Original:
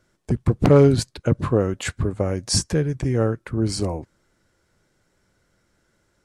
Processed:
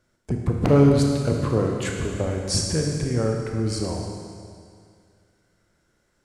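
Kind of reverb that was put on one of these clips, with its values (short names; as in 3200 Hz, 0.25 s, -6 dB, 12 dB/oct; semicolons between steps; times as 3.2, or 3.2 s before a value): Schroeder reverb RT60 2.2 s, combs from 25 ms, DRR 1 dB; gain -4 dB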